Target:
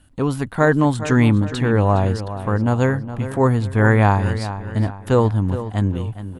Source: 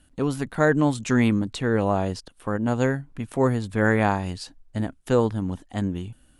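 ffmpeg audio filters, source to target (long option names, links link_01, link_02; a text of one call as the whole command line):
ffmpeg -i in.wav -filter_complex "[0:a]equalizer=frequency=100:width_type=o:width=0.67:gain=9,equalizer=frequency=1000:width_type=o:width=0.67:gain=4,equalizer=frequency=6300:width_type=o:width=0.67:gain=-3,asplit=2[link_01][link_02];[link_02]adelay=414,lowpass=frequency=4500:poles=1,volume=-12dB,asplit=2[link_03][link_04];[link_04]adelay=414,lowpass=frequency=4500:poles=1,volume=0.43,asplit=2[link_05][link_06];[link_06]adelay=414,lowpass=frequency=4500:poles=1,volume=0.43,asplit=2[link_07][link_08];[link_08]adelay=414,lowpass=frequency=4500:poles=1,volume=0.43[link_09];[link_01][link_03][link_05][link_07][link_09]amix=inputs=5:normalize=0,volume=3dB" out.wav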